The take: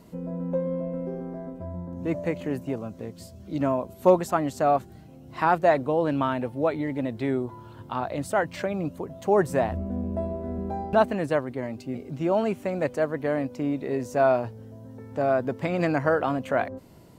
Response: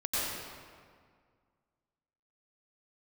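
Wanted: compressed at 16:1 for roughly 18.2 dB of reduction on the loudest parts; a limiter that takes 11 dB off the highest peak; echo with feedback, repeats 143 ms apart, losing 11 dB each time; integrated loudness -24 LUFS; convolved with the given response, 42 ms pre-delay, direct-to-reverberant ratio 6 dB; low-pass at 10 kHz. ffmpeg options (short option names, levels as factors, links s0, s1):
-filter_complex "[0:a]lowpass=10000,acompressor=threshold=0.0282:ratio=16,alimiter=level_in=1.5:limit=0.0631:level=0:latency=1,volume=0.668,aecho=1:1:143|286|429:0.282|0.0789|0.0221,asplit=2[s0][s1];[1:a]atrim=start_sample=2205,adelay=42[s2];[s1][s2]afir=irnorm=-1:irlink=0,volume=0.2[s3];[s0][s3]amix=inputs=2:normalize=0,volume=4.73"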